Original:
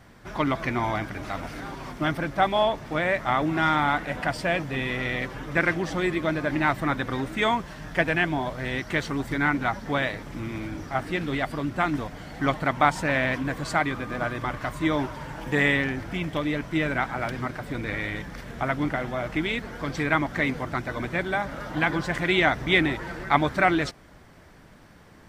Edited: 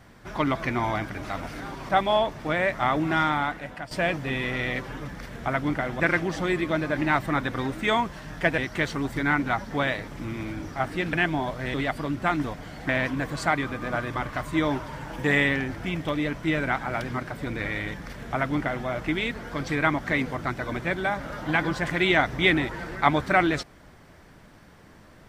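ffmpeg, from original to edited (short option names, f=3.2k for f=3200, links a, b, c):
-filter_complex "[0:a]asplit=9[a][b][c][d][e][f][g][h][i];[a]atrim=end=1.892[j];[b]atrim=start=2.348:end=4.37,asetpts=PTS-STARTPTS,afade=t=out:st=1.232:d=0.79:silence=0.223872[k];[c]atrim=start=4.37:end=5.542,asetpts=PTS-STARTPTS,afade=t=in:d=0.004:c=hsin:silence=0.223872[l];[d]atrim=start=18.228:end=19.152[m];[e]atrim=start=5.538:end=8.122[n];[f]atrim=start=8.728:end=11.282[o];[g]atrim=start=8.118:end=8.732[p];[h]atrim=start=11.278:end=12.432[q];[i]atrim=start=13.168[r];[k][l]concat=n=2:v=0:a=1[s];[j][s]acrossfade=d=0.004:c1=hsin:c2=hsin[t];[t][m]acrossfade=d=0.004:c1=hsin:c2=hsin[u];[u][n]acrossfade=d=0.004:c1=hsin:c2=hsin[v];[v][o]acrossfade=d=0.004:c1=hsin:c2=hsin[w];[w][p]acrossfade=d=0.004:c1=hsin:c2=hsin[x];[x][q]acrossfade=d=0.004:c1=hsin:c2=hsin[y];[y][r]acrossfade=d=0.004:c1=hsin:c2=hsin"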